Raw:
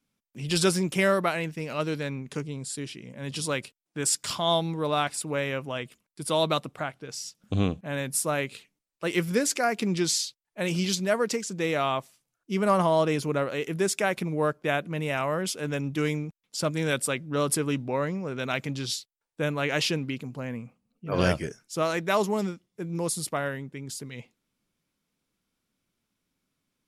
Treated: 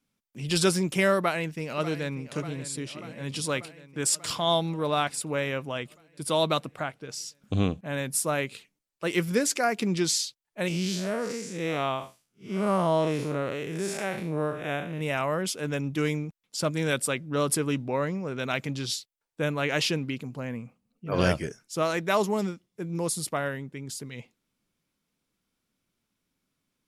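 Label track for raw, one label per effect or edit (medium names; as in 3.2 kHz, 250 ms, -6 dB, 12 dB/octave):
1.180000	2.330000	echo throw 590 ms, feedback 70%, level -13.5 dB
10.680000	15.010000	spectral blur width 147 ms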